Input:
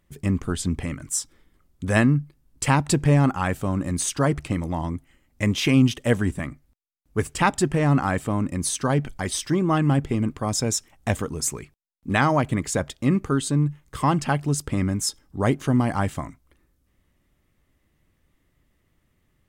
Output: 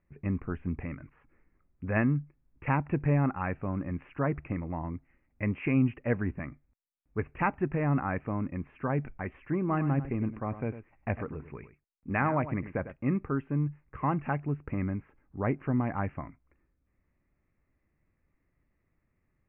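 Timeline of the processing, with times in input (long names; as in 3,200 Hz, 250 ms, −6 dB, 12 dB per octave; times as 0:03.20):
0:09.58–0:12.96: single-tap delay 101 ms −12.5 dB
whole clip: Butterworth low-pass 2,600 Hz 96 dB per octave; level −8 dB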